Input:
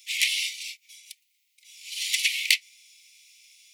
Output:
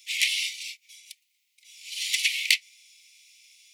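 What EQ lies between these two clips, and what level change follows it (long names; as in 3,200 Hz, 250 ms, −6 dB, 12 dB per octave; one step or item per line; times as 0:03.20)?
high-shelf EQ 12,000 Hz −5 dB
0.0 dB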